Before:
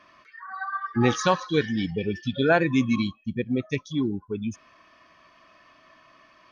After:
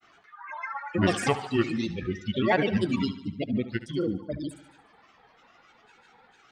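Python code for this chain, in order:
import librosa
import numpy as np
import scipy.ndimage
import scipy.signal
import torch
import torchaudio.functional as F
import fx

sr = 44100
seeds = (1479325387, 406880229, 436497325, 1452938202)

p1 = fx.granulator(x, sr, seeds[0], grain_ms=100.0, per_s=20.0, spray_ms=30.0, spread_st=7)
p2 = p1 + fx.echo_feedback(p1, sr, ms=73, feedback_pct=57, wet_db=-15.0, dry=0)
y = F.gain(torch.from_numpy(p2), -1.5).numpy()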